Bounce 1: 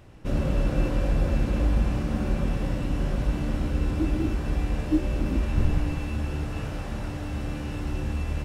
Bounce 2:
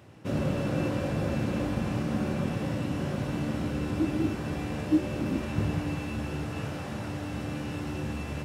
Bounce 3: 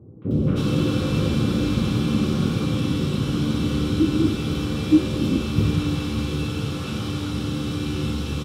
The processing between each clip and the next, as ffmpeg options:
-af "highpass=f=95:w=0.5412,highpass=f=95:w=1.3066"
-filter_complex "[0:a]superequalizer=8b=0.316:9b=0.447:11b=0.447:13b=2.51:14b=1.41,acrossover=split=650|2200[a][b][c];[b]adelay=220[d];[c]adelay=310[e];[a][d][e]amix=inputs=3:normalize=0,volume=8.5dB"

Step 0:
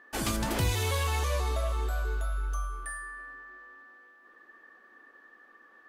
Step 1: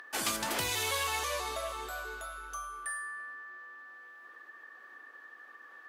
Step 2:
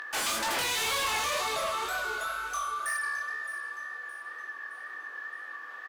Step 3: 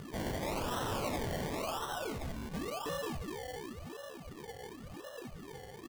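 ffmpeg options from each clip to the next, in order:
-af "acompressor=mode=upward:threshold=-46dB:ratio=2.5,highpass=f=880:p=1,volume=2dB"
-filter_complex "[0:a]flanger=delay=20:depth=6.5:speed=2,asplit=2[a][b];[b]highpass=f=720:p=1,volume=20dB,asoftclip=type=tanh:threshold=-22dB[c];[a][c]amix=inputs=2:normalize=0,lowpass=f=7k:p=1,volume=-6dB,aecho=1:1:617|1234|1851|2468:0.188|0.0848|0.0381|0.0172"
-af "acrusher=samples=27:mix=1:aa=0.000001:lfo=1:lforange=16.2:lforate=0.93,volume=-6dB"

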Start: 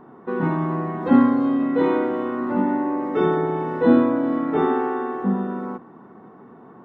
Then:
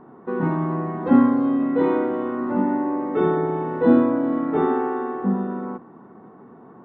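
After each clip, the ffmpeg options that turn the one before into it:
-af "highshelf=f=3k:g=-11"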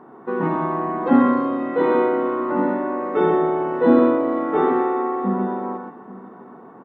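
-filter_complex "[0:a]highpass=f=330:p=1,asplit=2[a][b];[b]aecho=0:1:125|836:0.562|0.126[c];[a][c]amix=inputs=2:normalize=0,volume=4dB"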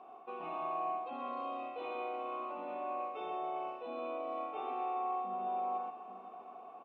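-filter_complex "[0:a]areverse,acompressor=threshold=-27dB:ratio=5,areverse,asplit=3[a][b][c];[a]bandpass=f=730:t=q:w=8,volume=0dB[d];[b]bandpass=f=1.09k:t=q:w=8,volume=-6dB[e];[c]bandpass=f=2.44k:t=q:w=8,volume=-9dB[f];[d][e][f]amix=inputs=3:normalize=0,aexciter=amount=9.8:drive=3.2:freq=2.2k,volume=1dB"

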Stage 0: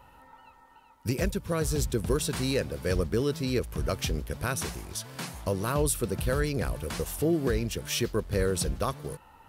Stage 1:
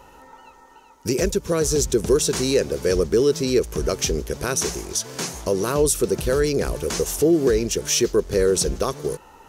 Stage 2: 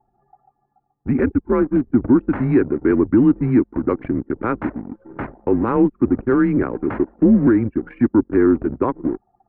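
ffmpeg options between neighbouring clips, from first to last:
-filter_complex "[0:a]equalizer=f=100:t=o:w=0.67:g=-7,equalizer=f=400:t=o:w=0.67:g=10,equalizer=f=6.3k:t=o:w=0.67:g=12,asplit=2[a][b];[b]alimiter=limit=-21dB:level=0:latency=1:release=88,volume=0dB[c];[a][c]amix=inputs=2:normalize=0"
-af "highpass=f=210:t=q:w=0.5412,highpass=f=210:t=q:w=1.307,lowpass=f=2.1k:t=q:w=0.5176,lowpass=f=2.1k:t=q:w=0.7071,lowpass=f=2.1k:t=q:w=1.932,afreqshift=-120,acontrast=27,anlmdn=100"

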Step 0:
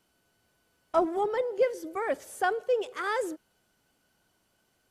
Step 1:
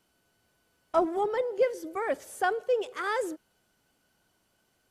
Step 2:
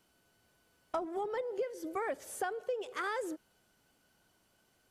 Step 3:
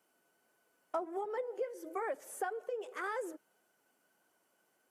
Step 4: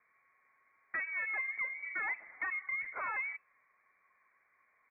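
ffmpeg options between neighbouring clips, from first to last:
-af anull
-af "acompressor=threshold=-32dB:ratio=16"
-af "highpass=310,equalizer=f=4k:t=o:w=1.2:g=-9.5,flanger=delay=1.2:depth=5.6:regen=-49:speed=1.6:shape=triangular,volume=3dB"
-af "aresample=11025,asoftclip=type=tanh:threshold=-37dB,aresample=44100,lowpass=f=2.2k:t=q:w=0.5098,lowpass=f=2.2k:t=q:w=0.6013,lowpass=f=2.2k:t=q:w=0.9,lowpass=f=2.2k:t=q:w=2.563,afreqshift=-2600,volume=5dB"

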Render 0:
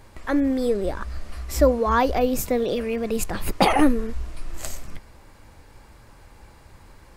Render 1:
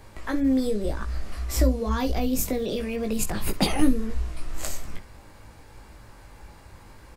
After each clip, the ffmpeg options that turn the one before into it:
-filter_complex "[0:a]acrossover=split=310|3000[a][b][c];[b]acompressor=threshold=-32dB:ratio=6[d];[a][d][c]amix=inputs=3:normalize=0,asplit=2[e][f];[f]aecho=0:1:19|65:0.562|0.141[g];[e][g]amix=inputs=2:normalize=0"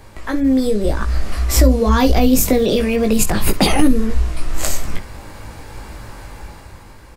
-af "dynaudnorm=f=190:g=9:m=8dB,alimiter=level_in=7dB:limit=-1dB:release=50:level=0:latency=1,volume=-1dB"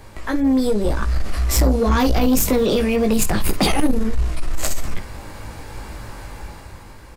-af "asoftclip=type=tanh:threshold=-10.5dB"

